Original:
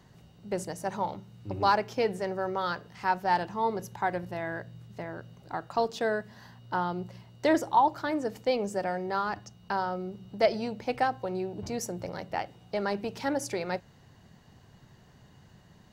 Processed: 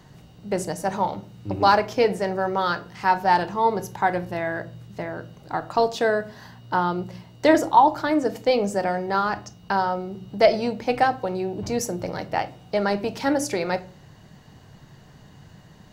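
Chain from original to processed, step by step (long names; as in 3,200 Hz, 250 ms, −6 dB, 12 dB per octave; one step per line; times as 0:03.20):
rectangular room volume 270 cubic metres, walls furnished, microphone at 0.52 metres
level +7 dB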